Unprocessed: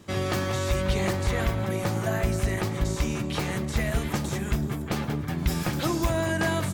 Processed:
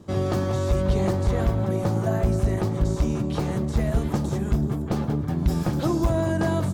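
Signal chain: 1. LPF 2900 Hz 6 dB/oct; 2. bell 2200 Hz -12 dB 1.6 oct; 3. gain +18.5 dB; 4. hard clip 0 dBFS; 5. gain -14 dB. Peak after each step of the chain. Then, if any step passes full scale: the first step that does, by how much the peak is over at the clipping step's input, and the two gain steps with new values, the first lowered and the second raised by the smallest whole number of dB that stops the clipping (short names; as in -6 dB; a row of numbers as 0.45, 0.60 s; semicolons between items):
-15.5, -15.5, +3.0, 0.0, -14.0 dBFS; step 3, 3.0 dB; step 3 +15.5 dB, step 5 -11 dB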